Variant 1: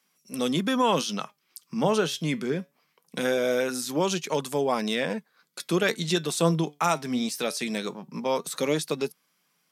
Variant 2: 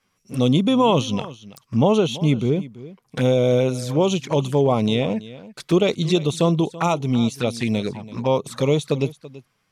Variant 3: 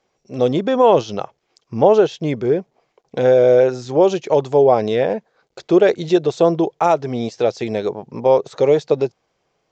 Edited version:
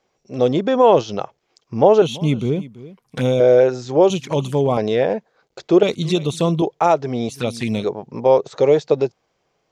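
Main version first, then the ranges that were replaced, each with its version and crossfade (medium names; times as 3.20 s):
3
2.02–3.40 s: from 2
4.10–4.77 s: from 2
5.83–6.62 s: from 2
7.29–7.84 s: from 2
not used: 1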